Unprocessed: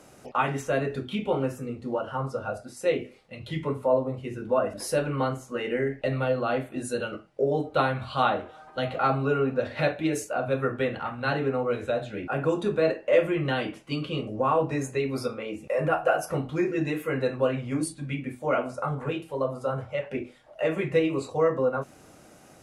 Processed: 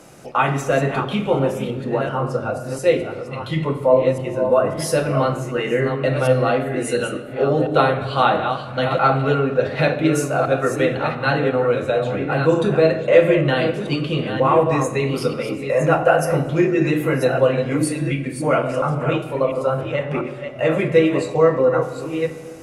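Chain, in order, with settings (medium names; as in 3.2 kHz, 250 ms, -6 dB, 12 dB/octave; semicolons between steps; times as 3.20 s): chunks repeated in reverse 697 ms, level -7.5 dB; simulated room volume 2000 m³, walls mixed, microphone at 0.73 m; trim +7 dB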